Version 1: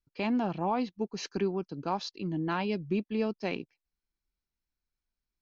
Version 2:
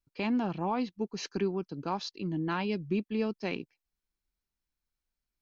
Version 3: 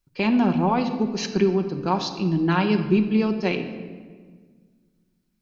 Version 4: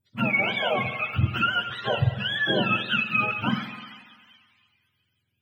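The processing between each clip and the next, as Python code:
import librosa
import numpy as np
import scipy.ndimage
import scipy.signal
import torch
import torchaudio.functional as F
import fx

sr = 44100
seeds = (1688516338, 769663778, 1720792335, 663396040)

y1 = fx.dynamic_eq(x, sr, hz=660.0, q=2.0, threshold_db=-45.0, ratio=4.0, max_db=-4)
y2 = fx.room_shoebox(y1, sr, seeds[0], volume_m3=1800.0, walls='mixed', distance_m=0.99)
y2 = y2 * librosa.db_to_amplitude(8.5)
y3 = fx.octave_mirror(y2, sr, pivot_hz=740.0)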